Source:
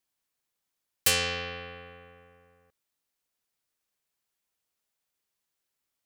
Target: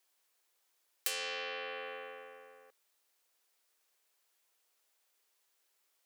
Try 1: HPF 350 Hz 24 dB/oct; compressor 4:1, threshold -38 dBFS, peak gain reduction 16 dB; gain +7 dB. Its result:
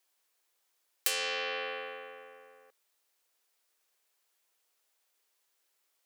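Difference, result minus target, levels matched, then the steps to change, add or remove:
compressor: peak gain reduction -5 dB
change: compressor 4:1, threshold -45 dBFS, peak gain reduction 21 dB

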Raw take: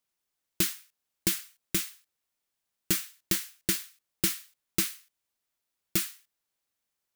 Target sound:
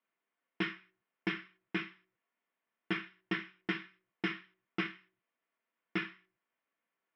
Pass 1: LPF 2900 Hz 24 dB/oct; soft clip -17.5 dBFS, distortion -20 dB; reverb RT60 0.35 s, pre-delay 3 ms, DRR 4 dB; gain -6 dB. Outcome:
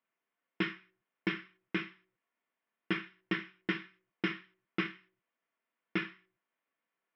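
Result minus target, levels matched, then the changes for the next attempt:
soft clip: distortion -8 dB
change: soft clip -24 dBFS, distortion -12 dB

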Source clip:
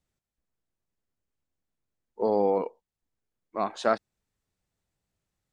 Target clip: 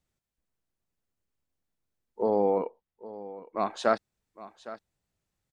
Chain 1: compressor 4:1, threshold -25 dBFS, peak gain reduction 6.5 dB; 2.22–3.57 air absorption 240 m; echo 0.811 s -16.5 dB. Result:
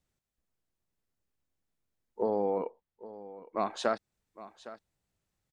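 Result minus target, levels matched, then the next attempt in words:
compressor: peak gain reduction +6.5 dB
2.22–3.57 air absorption 240 m; echo 0.811 s -16.5 dB

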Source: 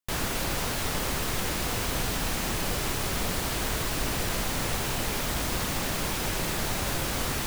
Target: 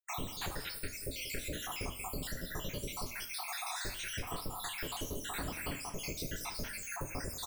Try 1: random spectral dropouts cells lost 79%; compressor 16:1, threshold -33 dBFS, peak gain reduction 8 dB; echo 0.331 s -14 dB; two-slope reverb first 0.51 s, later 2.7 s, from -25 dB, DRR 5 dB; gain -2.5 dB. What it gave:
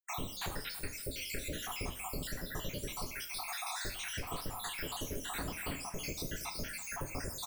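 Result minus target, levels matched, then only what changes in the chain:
echo 0.146 s late
change: echo 0.185 s -14 dB

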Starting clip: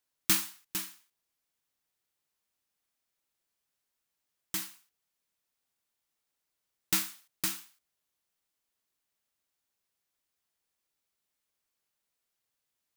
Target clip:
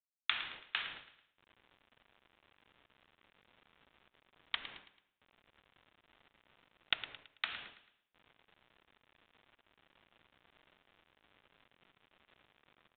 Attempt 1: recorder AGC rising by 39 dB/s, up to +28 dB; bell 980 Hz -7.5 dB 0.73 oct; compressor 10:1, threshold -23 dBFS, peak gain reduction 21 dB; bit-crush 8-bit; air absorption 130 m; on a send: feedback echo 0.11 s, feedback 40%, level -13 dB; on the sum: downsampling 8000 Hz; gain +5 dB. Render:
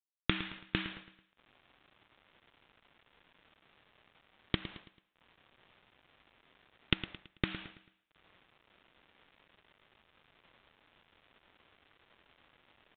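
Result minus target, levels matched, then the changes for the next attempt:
500 Hz band +11.5 dB
add after recorder AGC: Chebyshev high-pass 640 Hz, order 10

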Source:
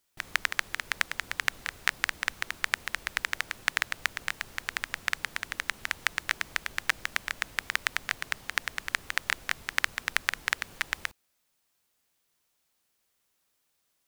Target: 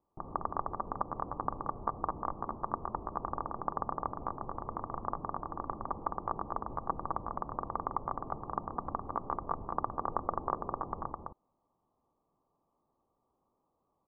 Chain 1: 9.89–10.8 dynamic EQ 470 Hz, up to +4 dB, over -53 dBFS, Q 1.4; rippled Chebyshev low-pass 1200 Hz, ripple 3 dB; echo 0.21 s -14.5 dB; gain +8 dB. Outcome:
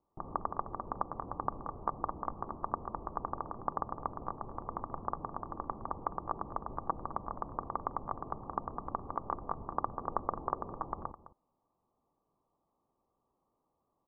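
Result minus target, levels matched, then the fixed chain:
echo-to-direct -11.5 dB
9.89–10.8 dynamic EQ 470 Hz, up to +4 dB, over -53 dBFS, Q 1.4; rippled Chebyshev low-pass 1200 Hz, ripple 3 dB; echo 0.21 s -3 dB; gain +8 dB

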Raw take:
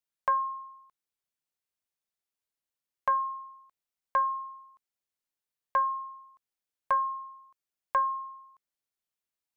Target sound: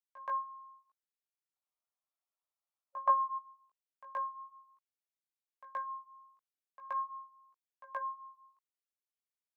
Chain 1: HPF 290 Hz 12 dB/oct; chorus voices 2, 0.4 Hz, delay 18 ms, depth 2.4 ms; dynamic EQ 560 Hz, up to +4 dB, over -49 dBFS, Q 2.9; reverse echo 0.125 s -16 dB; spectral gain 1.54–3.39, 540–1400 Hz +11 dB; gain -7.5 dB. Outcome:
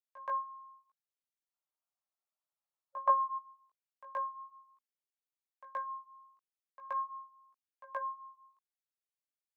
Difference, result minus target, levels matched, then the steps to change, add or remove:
500 Hz band +3.5 dB
remove: dynamic EQ 560 Hz, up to +4 dB, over -49 dBFS, Q 2.9

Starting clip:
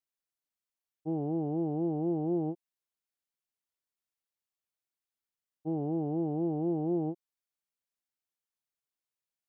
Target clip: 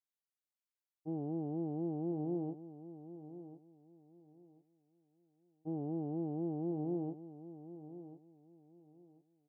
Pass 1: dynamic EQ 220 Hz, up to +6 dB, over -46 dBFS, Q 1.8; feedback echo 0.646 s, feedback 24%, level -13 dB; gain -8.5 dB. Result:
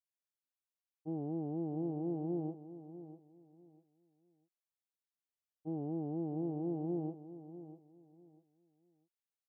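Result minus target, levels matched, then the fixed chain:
echo 0.395 s early
dynamic EQ 220 Hz, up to +6 dB, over -46 dBFS, Q 1.8; feedback echo 1.041 s, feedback 24%, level -13 dB; gain -8.5 dB

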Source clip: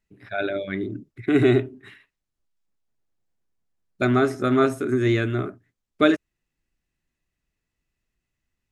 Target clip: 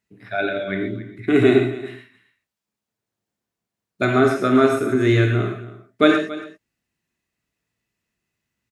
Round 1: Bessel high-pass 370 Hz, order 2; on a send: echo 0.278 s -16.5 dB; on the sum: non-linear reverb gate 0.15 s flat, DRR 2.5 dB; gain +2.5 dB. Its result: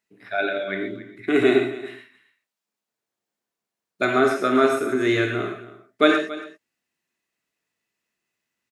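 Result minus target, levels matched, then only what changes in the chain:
125 Hz band -10.5 dB
change: Bessel high-pass 120 Hz, order 2

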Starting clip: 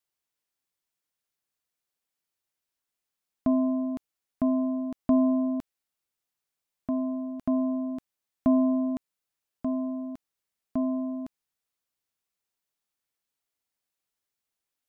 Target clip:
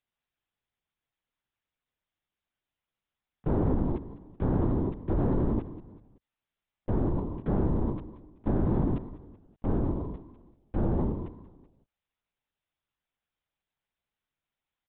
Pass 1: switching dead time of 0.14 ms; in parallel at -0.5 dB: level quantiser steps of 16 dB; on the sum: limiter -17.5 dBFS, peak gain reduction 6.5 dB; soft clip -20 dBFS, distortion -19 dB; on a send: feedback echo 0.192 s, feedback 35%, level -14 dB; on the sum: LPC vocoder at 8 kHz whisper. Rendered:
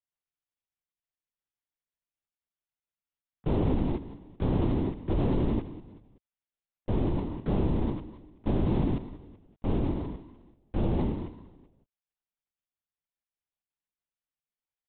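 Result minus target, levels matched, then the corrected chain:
switching dead time: distortion +14 dB
switching dead time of 0.055 ms; in parallel at -0.5 dB: level quantiser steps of 16 dB; on the sum: limiter -17.5 dBFS, peak gain reduction 6.5 dB; soft clip -20 dBFS, distortion -19 dB; on a send: feedback echo 0.192 s, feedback 35%, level -14 dB; on the sum: LPC vocoder at 8 kHz whisper

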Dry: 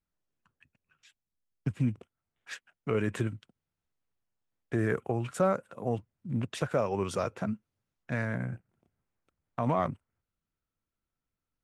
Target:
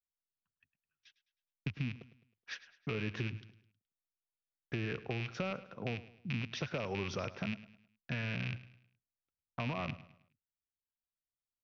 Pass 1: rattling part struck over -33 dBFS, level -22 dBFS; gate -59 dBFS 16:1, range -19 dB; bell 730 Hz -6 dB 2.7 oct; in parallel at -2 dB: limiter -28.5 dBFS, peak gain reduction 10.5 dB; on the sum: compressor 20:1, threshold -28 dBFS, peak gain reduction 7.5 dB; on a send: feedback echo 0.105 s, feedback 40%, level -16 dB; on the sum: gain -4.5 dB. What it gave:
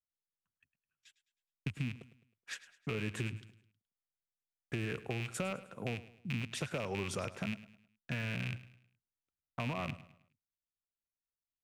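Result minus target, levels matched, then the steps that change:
8000 Hz band +9.0 dB
add after gate: steep low-pass 6000 Hz 96 dB/oct

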